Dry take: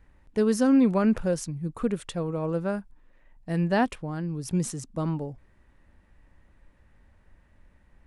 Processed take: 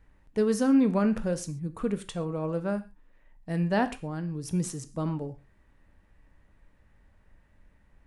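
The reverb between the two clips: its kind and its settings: gated-style reverb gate 160 ms falling, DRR 10 dB; trim -2.5 dB

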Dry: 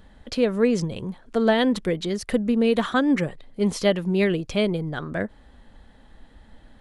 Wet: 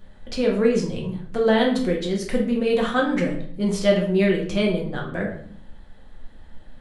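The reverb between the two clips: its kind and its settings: simulated room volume 79 m³, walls mixed, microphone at 0.94 m; trim -3 dB

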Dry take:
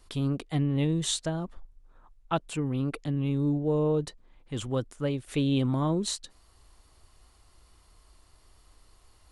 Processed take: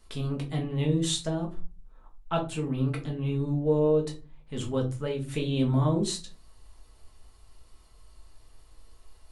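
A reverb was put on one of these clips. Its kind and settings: simulated room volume 140 m³, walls furnished, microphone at 1.5 m; trim -3 dB

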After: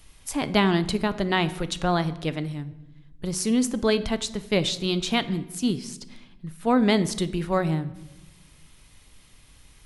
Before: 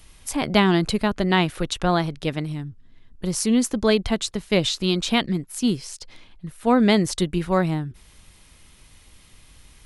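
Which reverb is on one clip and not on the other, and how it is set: simulated room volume 450 m³, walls mixed, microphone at 0.3 m; trim -3 dB

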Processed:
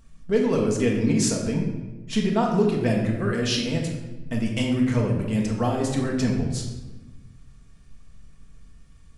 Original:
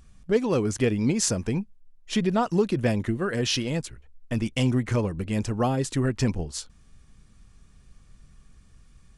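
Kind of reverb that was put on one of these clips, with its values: simulated room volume 690 m³, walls mixed, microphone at 1.6 m; trim -2.5 dB

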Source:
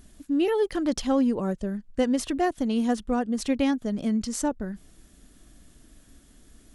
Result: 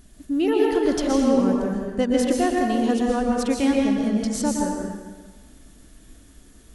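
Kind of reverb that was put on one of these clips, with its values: plate-style reverb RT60 1.4 s, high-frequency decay 0.8×, pre-delay 105 ms, DRR -1.5 dB; trim +1 dB

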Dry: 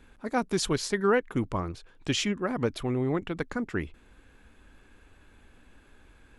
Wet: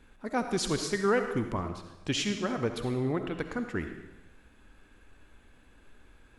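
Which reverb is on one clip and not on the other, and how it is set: algorithmic reverb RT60 1 s, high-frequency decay 1×, pre-delay 25 ms, DRR 6.5 dB; trim -2.5 dB

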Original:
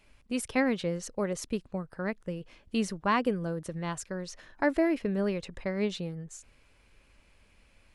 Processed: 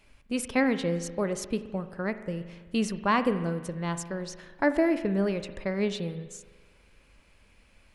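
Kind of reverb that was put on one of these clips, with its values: spring tank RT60 1.4 s, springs 41 ms, chirp 55 ms, DRR 11 dB; trim +2 dB

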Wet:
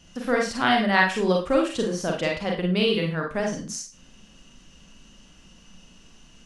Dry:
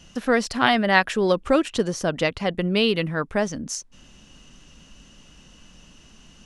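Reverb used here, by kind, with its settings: Schroeder reverb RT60 0.32 s, combs from 33 ms, DRR 0 dB; trim -5 dB

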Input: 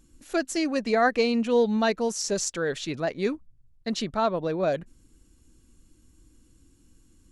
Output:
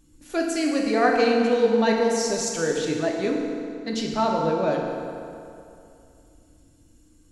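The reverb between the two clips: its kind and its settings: FDN reverb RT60 2.6 s, high-frequency decay 0.7×, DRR -1 dB; trim -1 dB

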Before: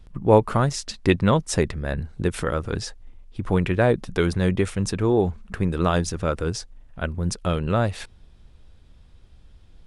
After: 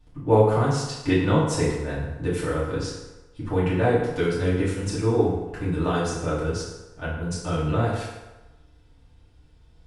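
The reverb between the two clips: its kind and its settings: FDN reverb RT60 1.1 s, low-frequency decay 0.8×, high-frequency decay 0.7×, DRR -9.5 dB; trim -11.5 dB

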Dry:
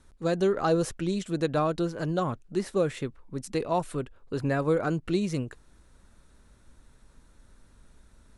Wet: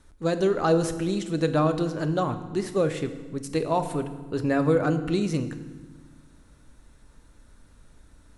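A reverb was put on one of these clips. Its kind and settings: FDN reverb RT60 1.3 s, low-frequency decay 1.55×, high-frequency decay 0.85×, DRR 8.5 dB; trim +2 dB

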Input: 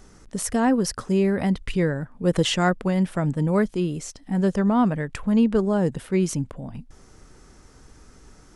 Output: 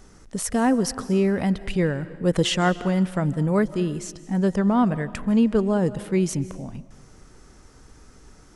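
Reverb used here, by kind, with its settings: algorithmic reverb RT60 1.3 s, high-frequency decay 0.9×, pre-delay 115 ms, DRR 16 dB

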